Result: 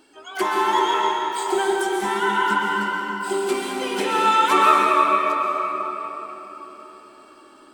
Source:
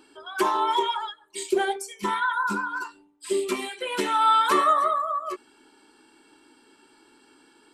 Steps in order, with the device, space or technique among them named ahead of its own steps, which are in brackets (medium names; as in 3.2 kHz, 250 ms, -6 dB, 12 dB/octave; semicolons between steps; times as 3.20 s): shimmer-style reverb (harmony voices +12 st -12 dB; reverberation RT60 4.3 s, pre-delay 117 ms, DRR -2.5 dB)